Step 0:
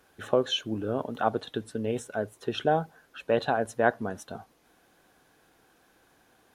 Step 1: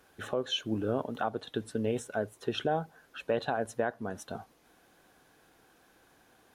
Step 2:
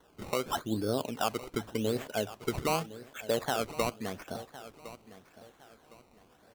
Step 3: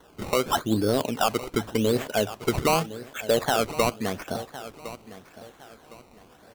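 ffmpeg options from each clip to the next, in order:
ffmpeg -i in.wav -af "alimiter=limit=-18dB:level=0:latency=1:release=396" out.wav
ffmpeg -i in.wav -af "acrusher=samples=18:mix=1:aa=0.000001:lfo=1:lforange=18:lforate=0.86,aecho=1:1:1060|2120|3180:0.158|0.0491|0.0152" out.wav
ffmpeg -i in.wav -af "volume=22.5dB,asoftclip=hard,volume=-22.5dB,volume=8.5dB" out.wav

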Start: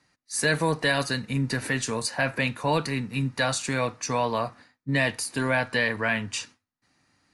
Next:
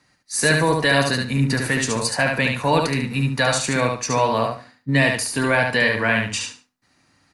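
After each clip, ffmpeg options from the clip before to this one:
ffmpeg -i in.wav -af "aecho=1:1:72|144|216:0.631|0.139|0.0305,volume=5dB" out.wav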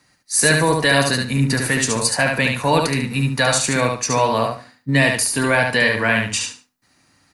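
ffmpeg -i in.wav -af "highshelf=frequency=8700:gain=9.5,volume=1.5dB" out.wav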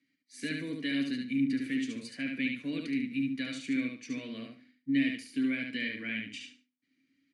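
ffmpeg -i in.wav -filter_complex "[0:a]asplit=3[link_01][link_02][link_03];[link_01]bandpass=frequency=270:width_type=q:width=8,volume=0dB[link_04];[link_02]bandpass=frequency=2290:width_type=q:width=8,volume=-6dB[link_05];[link_03]bandpass=frequency=3010:width_type=q:width=8,volume=-9dB[link_06];[link_04][link_05][link_06]amix=inputs=3:normalize=0,volume=-4.5dB" out.wav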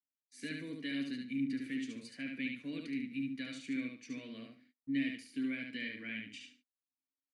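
ffmpeg -i in.wav -af "agate=range=-28dB:threshold=-60dB:ratio=16:detection=peak,volume=-6.5dB" out.wav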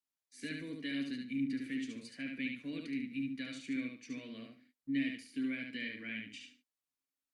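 ffmpeg -i in.wav -ar 48000 -c:a libopus -b:a 96k out.opus

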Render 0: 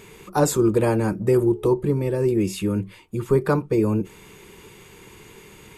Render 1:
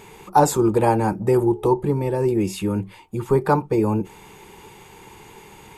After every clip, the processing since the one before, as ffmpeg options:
ffmpeg -i in.wav -af "equalizer=frequency=840:width=4:gain=14" out.wav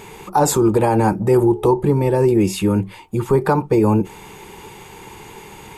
ffmpeg -i in.wav -af "alimiter=limit=-12dB:level=0:latency=1:release=65,volume=6dB" out.wav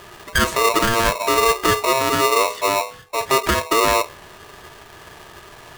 ffmpeg -i in.wav -af "aemphasis=mode=reproduction:type=75kf,bandreject=frequency=76.21:width_type=h:width=4,bandreject=frequency=152.42:width_type=h:width=4,bandreject=frequency=228.63:width_type=h:width=4,bandreject=frequency=304.84:width_type=h:width=4,bandreject=frequency=381.05:width_type=h:width=4,aeval=exprs='val(0)*sgn(sin(2*PI*800*n/s))':channel_layout=same,volume=-2dB" out.wav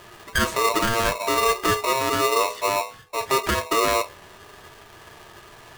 ffmpeg -i in.wav -af "flanger=delay=8.8:depth=1.7:regen=-56:speed=0.38:shape=sinusoidal" out.wav

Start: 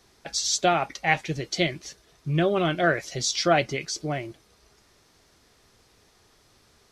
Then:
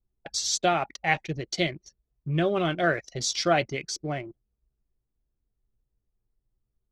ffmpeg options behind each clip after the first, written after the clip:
ffmpeg -i in.wav -af "anlmdn=3.98,volume=-2dB" out.wav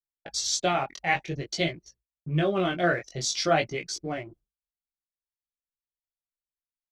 ffmpeg -i in.wav -af "agate=range=-33dB:threshold=-51dB:ratio=3:detection=peak,flanger=delay=17:depth=5.9:speed=0.51,volume=2.5dB" out.wav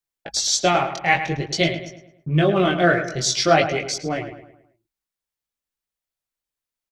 ffmpeg -i in.wav -filter_complex "[0:a]asplit=2[link_01][link_02];[link_02]adelay=107,lowpass=frequency=3000:poles=1,volume=-9.5dB,asplit=2[link_03][link_04];[link_04]adelay=107,lowpass=frequency=3000:poles=1,volume=0.45,asplit=2[link_05][link_06];[link_06]adelay=107,lowpass=frequency=3000:poles=1,volume=0.45,asplit=2[link_07][link_08];[link_08]adelay=107,lowpass=frequency=3000:poles=1,volume=0.45,asplit=2[link_09][link_10];[link_10]adelay=107,lowpass=frequency=3000:poles=1,volume=0.45[link_11];[link_01][link_03][link_05][link_07][link_09][link_11]amix=inputs=6:normalize=0,volume=7dB" out.wav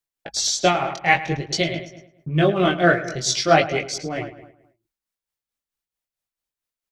ffmpeg -i in.wav -af "tremolo=f=4.5:d=0.52,volume=1.5dB" out.wav

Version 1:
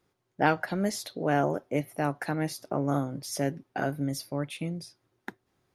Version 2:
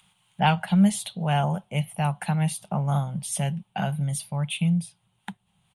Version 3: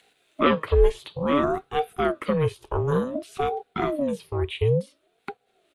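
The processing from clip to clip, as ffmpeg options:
ffmpeg -i in.wav -filter_complex "[0:a]firequalizer=gain_entry='entry(120,0);entry(190,10);entry(270,-22);entry(840,1);entry(1200,-6);entry(1800,-8);entry(3000,9);entry(5100,-13);entry(9100,8);entry(13000,-12)':delay=0.05:min_phase=1,acrossover=split=930[link_01][link_02];[link_02]acompressor=mode=upward:threshold=-59dB:ratio=2.5[link_03];[link_01][link_03]amix=inputs=2:normalize=0,volume=5.5dB" out.wav
ffmpeg -i in.wav -filter_complex "[0:a]equalizer=frequency=9200:width=4.9:gain=-9.5,acrossover=split=3300[link_01][link_02];[link_02]acompressor=threshold=-52dB:ratio=4:attack=1:release=60[link_03];[link_01][link_03]amix=inputs=2:normalize=0,aeval=exprs='val(0)*sin(2*PI*420*n/s+420*0.45/0.56*sin(2*PI*0.56*n/s))':channel_layout=same,volume=4dB" out.wav

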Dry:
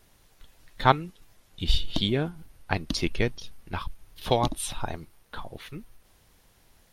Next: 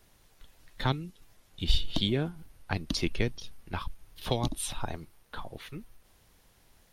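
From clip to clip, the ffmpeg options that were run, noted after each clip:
ffmpeg -i in.wav -filter_complex "[0:a]acrossover=split=360|3000[link_01][link_02][link_03];[link_02]acompressor=threshold=-30dB:ratio=6[link_04];[link_01][link_04][link_03]amix=inputs=3:normalize=0,volume=-2dB" out.wav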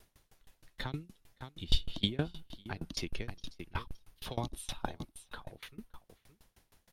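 ffmpeg -i in.wav -af "aecho=1:1:568:0.168,aeval=exprs='val(0)*pow(10,-26*if(lt(mod(6.4*n/s,1),2*abs(6.4)/1000),1-mod(6.4*n/s,1)/(2*abs(6.4)/1000),(mod(6.4*n/s,1)-2*abs(6.4)/1000)/(1-2*abs(6.4)/1000))/20)':channel_layout=same,volume=2.5dB" out.wav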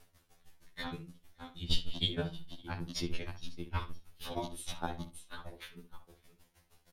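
ffmpeg -i in.wav -filter_complex "[0:a]asplit=2[link_01][link_02];[link_02]adelay=63,lowpass=frequency=3000:poles=1,volume=-10.5dB,asplit=2[link_03][link_04];[link_04]adelay=63,lowpass=frequency=3000:poles=1,volume=0.17[link_05];[link_01][link_03][link_05]amix=inputs=3:normalize=0,afftfilt=real='re*2*eq(mod(b,4),0)':imag='im*2*eq(mod(b,4),0)':win_size=2048:overlap=0.75,volume=2.5dB" out.wav

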